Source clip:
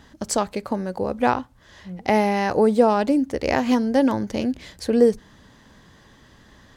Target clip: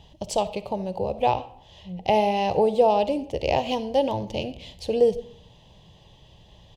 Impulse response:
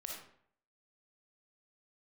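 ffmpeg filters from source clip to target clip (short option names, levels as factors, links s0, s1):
-filter_complex "[0:a]firequalizer=gain_entry='entry(170,0);entry(240,-16);entry(360,-6);entry(610,-1);entry(880,-2);entry(1400,-26);entry(2800,4);entry(4500,-6);entry(8200,-11)':delay=0.05:min_phase=1,asplit=2[s0][s1];[1:a]atrim=start_sample=2205[s2];[s1][s2]afir=irnorm=-1:irlink=0,volume=0.422[s3];[s0][s3]amix=inputs=2:normalize=0"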